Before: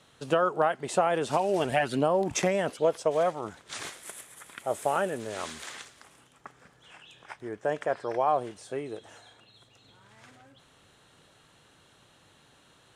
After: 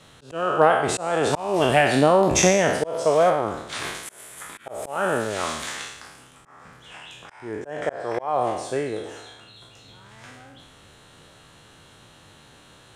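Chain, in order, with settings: spectral trails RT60 0.85 s; 3.29–3.95 dynamic EQ 6800 Hz, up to -7 dB, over -53 dBFS, Q 1.1; auto swell 0.307 s; low shelf 98 Hz +6 dB; gain +6.5 dB

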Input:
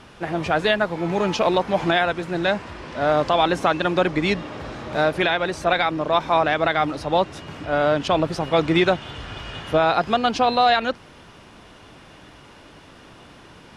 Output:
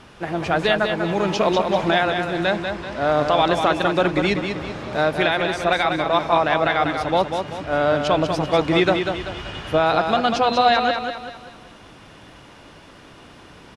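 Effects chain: feedback echo 0.193 s, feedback 42%, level -6 dB

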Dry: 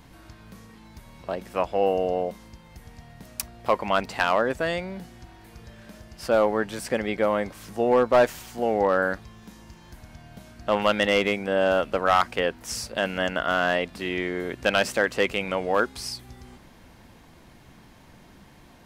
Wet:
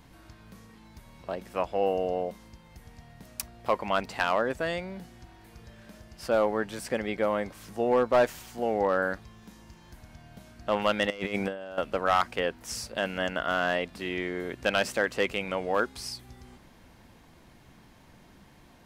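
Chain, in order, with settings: 11.1–11.78 negative-ratio compressor -28 dBFS, ratio -0.5; gain -4 dB

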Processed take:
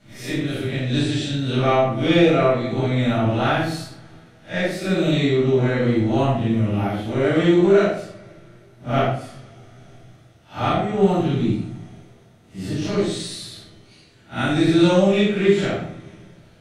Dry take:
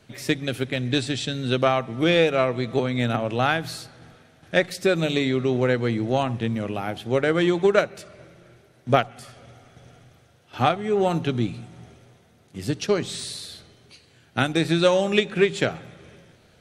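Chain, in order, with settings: time blur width 0.106 s; shoebox room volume 540 m³, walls furnished, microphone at 7.4 m; gain -6 dB

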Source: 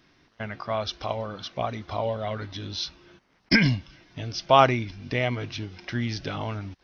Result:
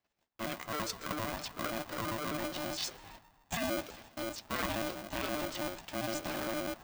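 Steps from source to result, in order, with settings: trilling pitch shifter +5.5 st, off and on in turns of 66 ms; dynamic EQ 160 Hz, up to +5 dB, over -41 dBFS, Q 1.1; reverse; compressor 5:1, threshold -36 dBFS, peak gain reduction 21 dB; reverse; gate -58 dBFS, range -27 dB; on a send: band-limited delay 0.133 s, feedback 63%, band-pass 590 Hz, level -11 dB; on the sum: polarity switched at an audio rate 450 Hz; gain +1 dB

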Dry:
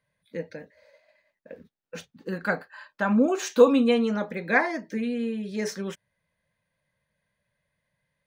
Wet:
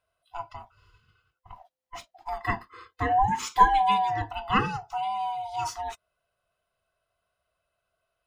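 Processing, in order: band-swap scrambler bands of 500 Hz; gain -1.5 dB

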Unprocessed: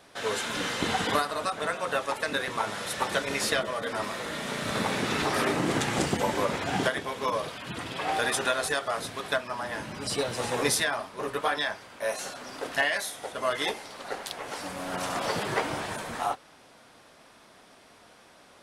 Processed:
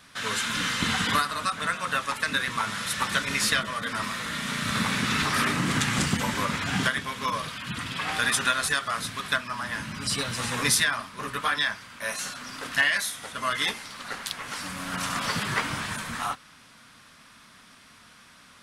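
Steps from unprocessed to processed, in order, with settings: band shelf 520 Hz -12.5 dB; gain +4.5 dB

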